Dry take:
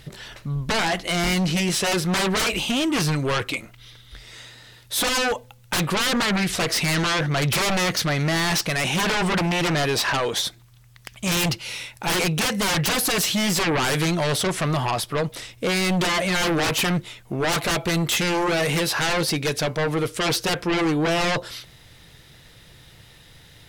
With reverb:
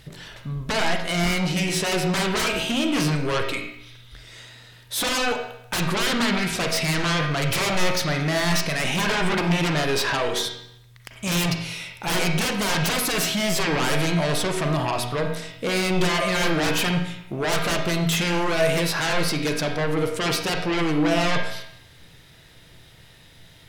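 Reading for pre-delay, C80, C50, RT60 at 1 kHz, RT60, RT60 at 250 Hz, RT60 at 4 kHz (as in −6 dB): 35 ms, 7.0 dB, 4.5 dB, 0.75 s, 0.75 s, 0.75 s, 0.70 s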